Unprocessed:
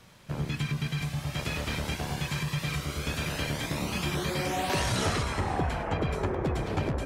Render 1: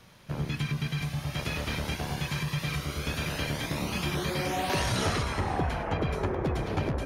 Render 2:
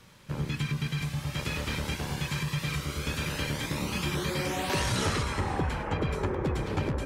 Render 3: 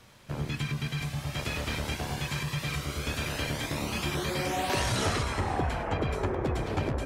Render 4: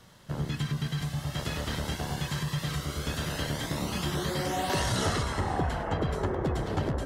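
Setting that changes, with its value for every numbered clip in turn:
notch filter, centre frequency: 7,700, 690, 170, 2,400 Hertz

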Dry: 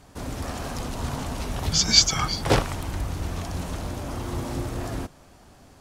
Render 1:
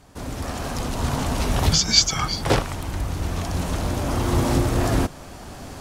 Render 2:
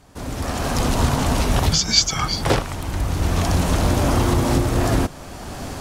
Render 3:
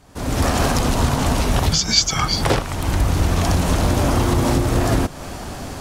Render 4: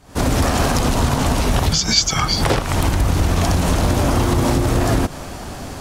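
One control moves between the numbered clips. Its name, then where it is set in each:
camcorder AGC, rising by: 5.3, 14, 35, 86 dB per second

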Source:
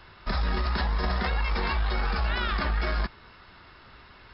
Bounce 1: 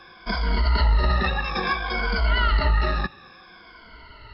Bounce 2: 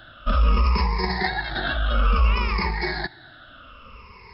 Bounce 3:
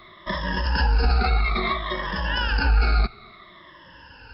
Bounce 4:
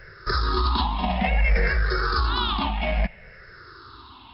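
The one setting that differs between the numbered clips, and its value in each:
rippled gain that drifts along the octave scale, ripples per octave: 1.8, 0.83, 1.2, 0.54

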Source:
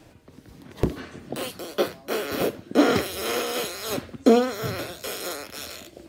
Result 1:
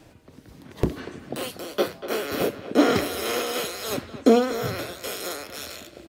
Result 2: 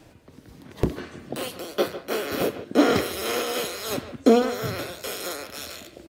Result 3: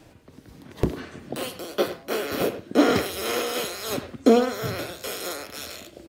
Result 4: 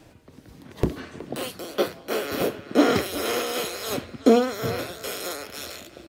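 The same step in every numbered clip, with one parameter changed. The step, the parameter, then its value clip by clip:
far-end echo of a speakerphone, delay time: 240, 150, 100, 370 milliseconds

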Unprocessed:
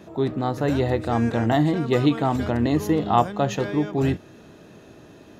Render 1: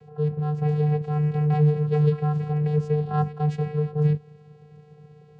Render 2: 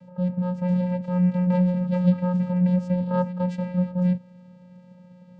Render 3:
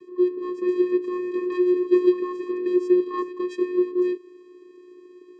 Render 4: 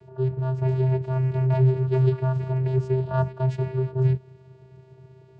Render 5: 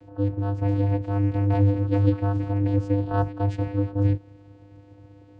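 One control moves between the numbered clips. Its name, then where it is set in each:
channel vocoder, frequency: 150, 180, 360, 130, 100 Hertz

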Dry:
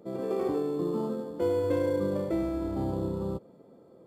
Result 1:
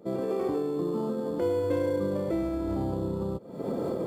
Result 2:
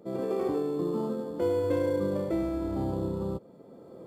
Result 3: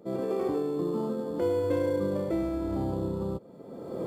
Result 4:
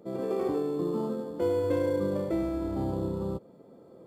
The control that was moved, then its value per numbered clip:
camcorder AGC, rising by: 84, 13, 33, 5.2 dB per second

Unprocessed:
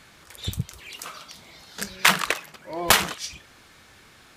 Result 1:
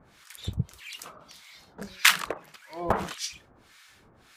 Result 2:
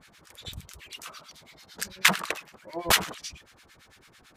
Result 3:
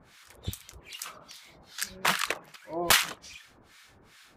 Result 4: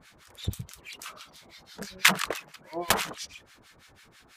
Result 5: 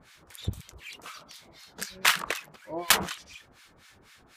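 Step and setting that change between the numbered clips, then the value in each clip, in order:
two-band tremolo in antiphase, speed: 1.7, 9, 2.5, 6.1, 4 Hertz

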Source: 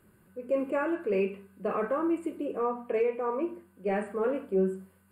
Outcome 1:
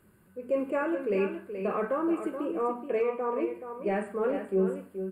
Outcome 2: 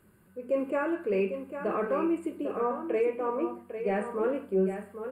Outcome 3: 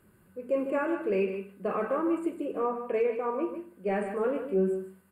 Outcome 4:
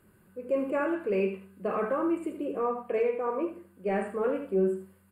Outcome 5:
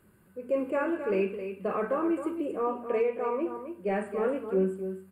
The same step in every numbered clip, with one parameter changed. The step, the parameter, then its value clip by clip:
single-tap delay, delay time: 427, 800, 151, 77, 266 milliseconds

